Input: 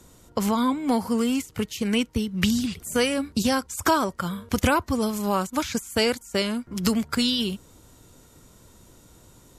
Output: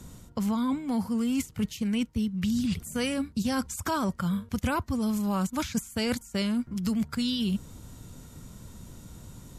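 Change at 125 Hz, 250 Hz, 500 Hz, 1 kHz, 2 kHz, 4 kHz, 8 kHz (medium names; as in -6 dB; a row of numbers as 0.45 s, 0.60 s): -1.0 dB, -2.5 dB, -9.5 dB, -8.0 dB, -8.0 dB, -8.0 dB, -6.0 dB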